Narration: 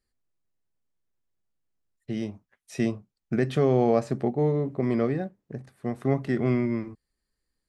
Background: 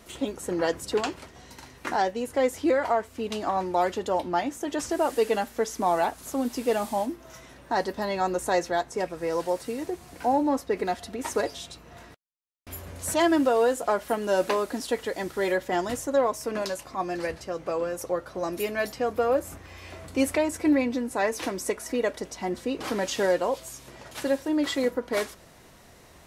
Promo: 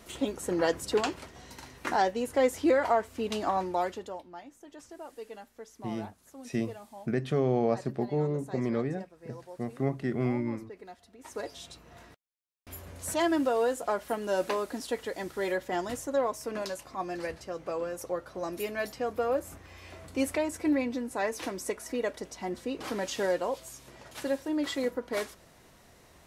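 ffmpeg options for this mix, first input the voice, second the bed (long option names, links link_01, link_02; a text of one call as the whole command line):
ffmpeg -i stem1.wav -i stem2.wav -filter_complex "[0:a]adelay=3750,volume=-5dB[link_01];[1:a]volume=13.5dB,afade=type=out:start_time=3.45:duration=0.78:silence=0.11885,afade=type=in:start_time=11.19:duration=0.51:silence=0.188365[link_02];[link_01][link_02]amix=inputs=2:normalize=0" out.wav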